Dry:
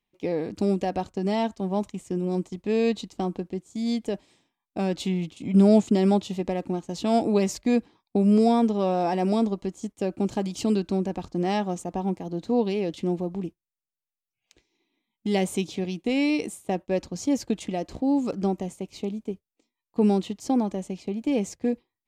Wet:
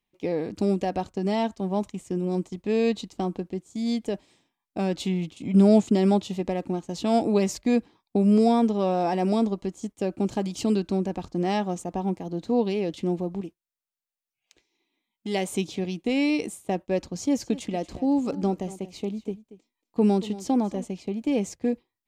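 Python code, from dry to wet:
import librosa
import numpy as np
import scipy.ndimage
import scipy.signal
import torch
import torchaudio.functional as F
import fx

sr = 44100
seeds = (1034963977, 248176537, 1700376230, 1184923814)

y = fx.low_shelf(x, sr, hz=250.0, db=-9.5, at=(13.41, 15.53))
y = fx.echo_single(y, sr, ms=232, db=-16.5, at=(17.39, 20.83), fade=0.02)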